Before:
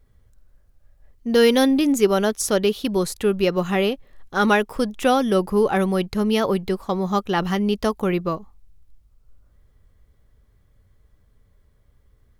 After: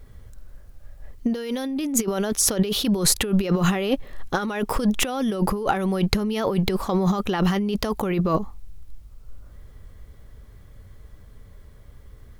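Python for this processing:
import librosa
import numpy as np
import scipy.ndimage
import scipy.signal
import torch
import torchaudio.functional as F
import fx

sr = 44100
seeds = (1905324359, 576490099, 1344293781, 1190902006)

y = fx.over_compress(x, sr, threshold_db=-28.0, ratio=-1.0)
y = F.gain(torch.from_numpy(y), 5.0).numpy()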